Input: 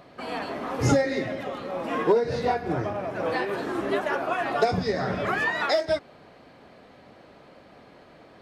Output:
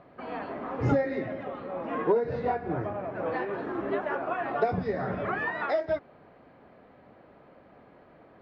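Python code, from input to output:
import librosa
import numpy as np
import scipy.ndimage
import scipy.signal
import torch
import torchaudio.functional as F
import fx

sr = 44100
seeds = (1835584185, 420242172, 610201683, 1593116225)

y = scipy.signal.sosfilt(scipy.signal.butter(2, 1900.0, 'lowpass', fs=sr, output='sos'), x)
y = y * 10.0 ** (-3.5 / 20.0)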